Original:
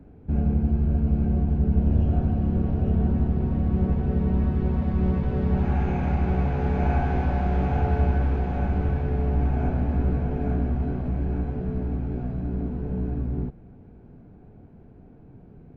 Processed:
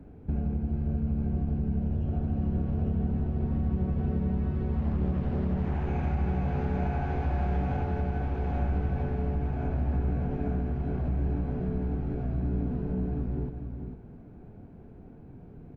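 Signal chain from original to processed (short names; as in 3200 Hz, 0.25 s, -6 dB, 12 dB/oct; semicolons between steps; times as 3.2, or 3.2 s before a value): compressor, threshold -26 dBFS, peak gain reduction 10 dB; echo 0.448 s -8 dB; 4.79–5.88 Doppler distortion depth 0.5 ms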